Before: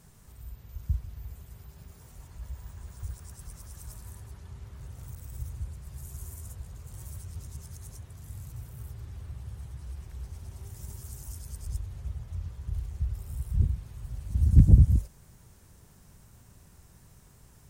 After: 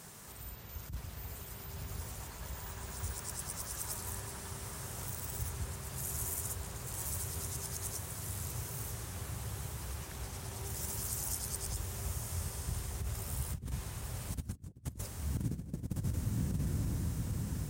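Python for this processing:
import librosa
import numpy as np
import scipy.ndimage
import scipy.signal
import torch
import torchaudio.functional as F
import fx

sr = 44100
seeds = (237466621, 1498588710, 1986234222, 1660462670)

y = fx.echo_diffused(x, sr, ms=1040, feedback_pct=54, wet_db=-6.0)
y = fx.over_compress(y, sr, threshold_db=-29.0, ratio=-0.5)
y = fx.highpass(y, sr, hz=390.0, slope=6)
y = F.gain(torch.from_numpy(y), 6.5).numpy()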